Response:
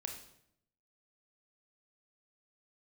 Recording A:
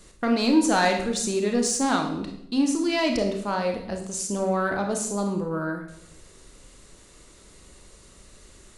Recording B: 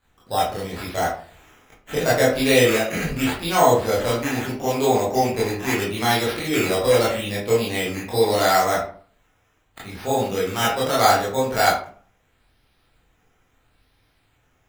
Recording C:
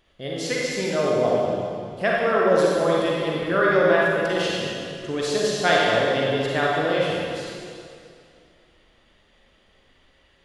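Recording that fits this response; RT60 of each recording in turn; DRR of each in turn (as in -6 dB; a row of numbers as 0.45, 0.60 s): A; 0.75, 0.45, 2.4 s; 3.0, -7.0, -5.0 dB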